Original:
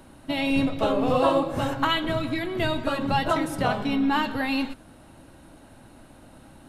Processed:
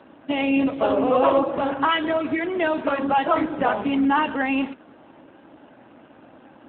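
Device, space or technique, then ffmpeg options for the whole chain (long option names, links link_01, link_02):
telephone: -filter_complex "[0:a]asettb=1/sr,asplit=3[link_01][link_02][link_03];[link_01]atrim=end=2.394[link_04];[link_02]atrim=start=2.39:end=2.98,asetpts=PTS-STARTPTS,afade=type=in:duration=0.004:curve=qsin,afade=type=out:start_time=0.586:duration=0.004:curve=qsin,lowpass=frequency=9000:width=0.5412,lowpass=frequency=9000:width=1.3066[link_05];[link_03]atrim=start=2.976[link_06];[link_04][link_05]acrossfade=duration=0.004:curve1=hsin:curve2=qsin[link_07];[link_07][link_06]acrossfade=duration=0.004:curve1=qsin:curve2=hsin,highpass=260,lowpass=3200,asoftclip=type=tanh:threshold=-13dB,volume=6dB" -ar 8000 -c:a libopencore_amrnb -b:a 7400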